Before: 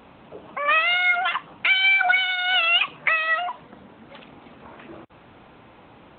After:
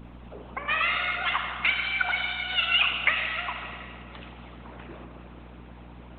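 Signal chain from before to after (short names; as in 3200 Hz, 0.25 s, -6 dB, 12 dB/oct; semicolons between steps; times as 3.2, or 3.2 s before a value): hum 60 Hz, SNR 11 dB; Schroeder reverb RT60 2.2 s, combs from 27 ms, DRR 0 dB; harmonic-percussive split harmonic -16 dB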